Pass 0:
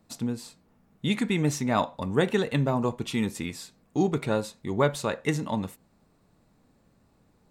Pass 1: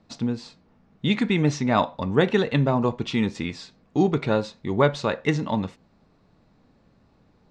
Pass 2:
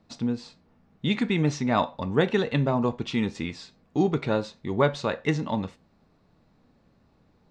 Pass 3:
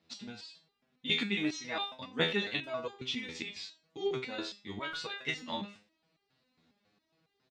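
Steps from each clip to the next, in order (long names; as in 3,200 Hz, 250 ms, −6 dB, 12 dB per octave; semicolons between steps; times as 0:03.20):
low-pass filter 5,500 Hz 24 dB per octave; level +4 dB
tuned comb filter 80 Hz, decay 0.22 s, mix 40%
meter weighting curve D; far-end echo of a speakerphone 90 ms, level −14 dB; step-sequenced resonator 7.3 Hz 82–400 Hz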